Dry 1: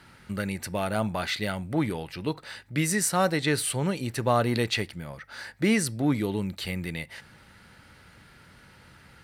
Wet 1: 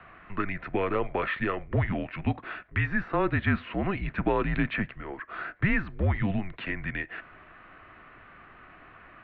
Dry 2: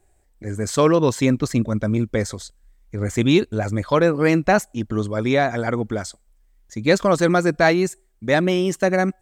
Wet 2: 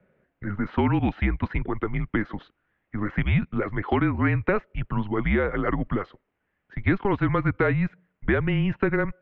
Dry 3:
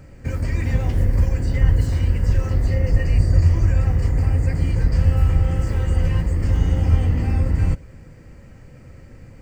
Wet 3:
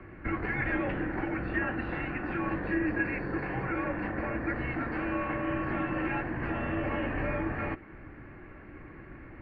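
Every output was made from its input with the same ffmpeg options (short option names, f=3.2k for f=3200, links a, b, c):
-filter_complex "[0:a]acrossover=split=390|1900[a][b][c];[a]acompressor=threshold=-28dB:ratio=4[d];[b]acompressor=threshold=-31dB:ratio=4[e];[c]acompressor=threshold=-34dB:ratio=4[f];[d][e][f]amix=inputs=3:normalize=0,highpass=f=240:t=q:w=0.5412,highpass=f=240:t=q:w=1.307,lowpass=f=2.8k:t=q:w=0.5176,lowpass=f=2.8k:t=q:w=0.7071,lowpass=f=2.8k:t=q:w=1.932,afreqshift=-200,volume=5dB"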